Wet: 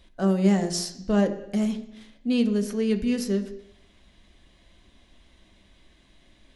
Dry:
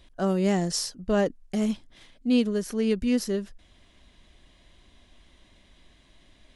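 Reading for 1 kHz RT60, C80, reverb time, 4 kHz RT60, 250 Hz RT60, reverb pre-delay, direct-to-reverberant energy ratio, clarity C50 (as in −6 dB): 0.80 s, 14.5 dB, 0.80 s, 0.85 s, 0.80 s, 3 ms, 6.0 dB, 12.0 dB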